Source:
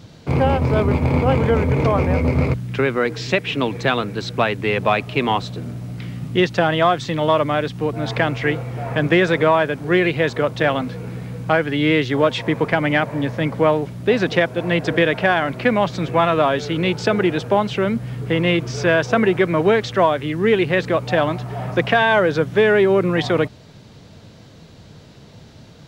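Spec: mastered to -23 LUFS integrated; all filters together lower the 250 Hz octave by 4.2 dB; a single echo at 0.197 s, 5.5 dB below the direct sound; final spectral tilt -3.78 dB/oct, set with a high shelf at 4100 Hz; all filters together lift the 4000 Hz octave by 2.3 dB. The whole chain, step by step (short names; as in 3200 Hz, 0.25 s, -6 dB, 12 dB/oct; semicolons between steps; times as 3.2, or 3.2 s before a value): bell 250 Hz -6.5 dB; bell 4000 Hz +6 dB; high shelf 4100 Hz -5.5 dB; echo 0.197 s -5.5 dB; gain -4 dB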